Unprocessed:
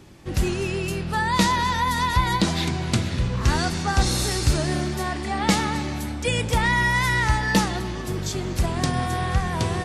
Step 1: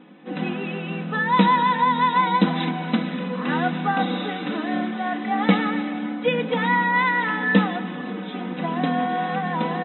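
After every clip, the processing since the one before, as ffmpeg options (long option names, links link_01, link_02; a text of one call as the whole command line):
ffmpeg -i in.wav -af "aecho=1:1:4:0.85,afftfilt=real='re*between(b*sr/4096,160,4000)':imag='im*between(b*sr/4096,160,4000)':win_size=4096:overlap=0.75,aemphasis=mode=reproduction:type=75fm" out.wav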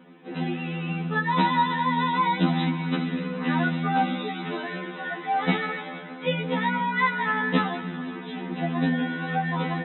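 ffmpeg -i in.wav -af "afftfilt=real='re*2*eq(mod(b,4),0)':imag='im*2*eq(mod(b,4),0)':win_size=2048:overlap=0.75" out.wav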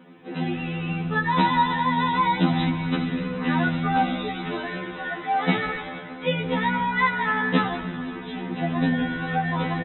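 ffmpeg -i in.wav -filter_complex "[0:a]asplit=6[link_01][link_02][link_03][link_04][link_05][link_06];[link_02]adelay=86,afreqshift=-65,volume=-19.5dB[link_07];[link_03]adelay=172,afreqshift=-130,volume=-23.8dB[link_08];[link_04]adelay=258,afreqshift=-195,volume=-28.1dB[link_09];[link_05]adelay=344,afreqshift=-260,volume=-32.4dB[link_10];[link_06]adelay=430,afreqshift=-325,volume=-36.7dB[link_11];[link_01][link_07][link_08][link_09][link_10][link_11]amix=inputs=6:normalize=0,volume=1.5dB" out.wav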